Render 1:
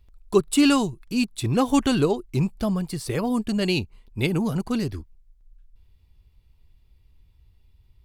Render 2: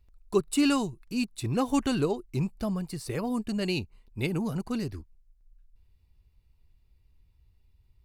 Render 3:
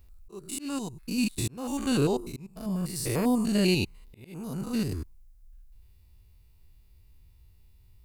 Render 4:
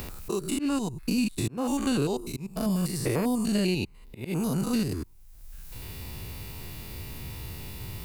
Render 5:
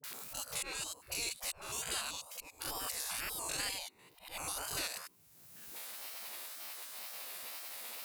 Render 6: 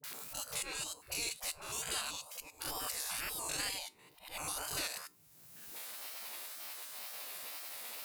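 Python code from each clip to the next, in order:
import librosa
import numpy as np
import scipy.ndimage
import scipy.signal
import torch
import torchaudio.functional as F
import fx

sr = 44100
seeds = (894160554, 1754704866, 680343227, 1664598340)

y1 = fx.notch(x, sr, hz=3300.0, q=8.5)
y1 = y1 * librosa.db_to_amplitude(-6.0)
y2 = fx.spec_steps(y1, sr, hold_ms=100)
y2 = fx.high_shelf(y2, sr, hz=7500.0, db=12.0)
y2 = fx.auto_swell(y2, sr, attack_ms=701.0)
y2 = y2 * librosa.db_to_amplitude(7.0)
y3 = fx.band_squash(y2, sr, depth_pct=100)
y3 = y3 * librosa.db_to_amplitude(1.0)
y4 = fx.spec_gate(y3, sr, threshold_db=-25, keep='weak')
y4 = fx.dispersion(y4, sr, late='highs', ms=44.0, hz=630.0)
y4 = fx.wow_flutter(y4, sr, seeds[0], rate_hz=2.1, depth_cents=110.0)
y4 = y4 * librosa.db_to_amplitude(1.5)
y5 = fx.comb_fb(y4, sr, f0_hz=150.0, decay_s=0.23, harmonics='all', damping=0.0, mix_pct=50)
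y5 = y5 * librosa.db_to_amplitude(4.5)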